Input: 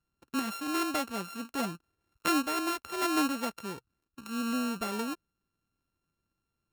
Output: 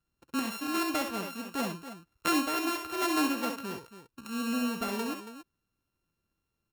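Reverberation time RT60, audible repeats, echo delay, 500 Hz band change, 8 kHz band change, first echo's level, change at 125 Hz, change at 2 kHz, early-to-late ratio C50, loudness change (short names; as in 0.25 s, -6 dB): none, 2, 65 ms, +1.0 dB, +0.5 dB, -6.0 dB, +1.0 dB, +1.5 dB, none, +0.5 dB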